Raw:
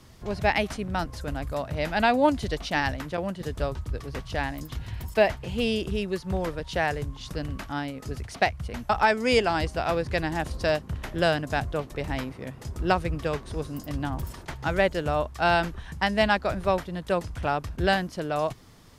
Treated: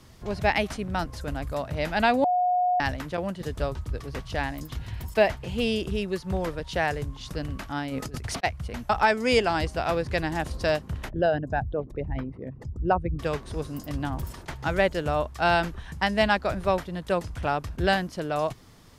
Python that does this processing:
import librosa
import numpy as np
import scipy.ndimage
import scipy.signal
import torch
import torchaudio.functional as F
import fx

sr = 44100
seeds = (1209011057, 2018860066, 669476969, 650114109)

y = fx.over_compress(x, sr, threshold_db=-37.0, ratio=-0.5, at=(7.89, 8.43), fade=0.02)
y = fx.envelope_sharpen(y, sr, power=2.0, at=(11.08, 13.18), fade=0.02)
y = fx.edit(y, sr, fx.bleep(start_s=2.24, length_s=0.56, hz=723.0, db=-20.0), tone=tone)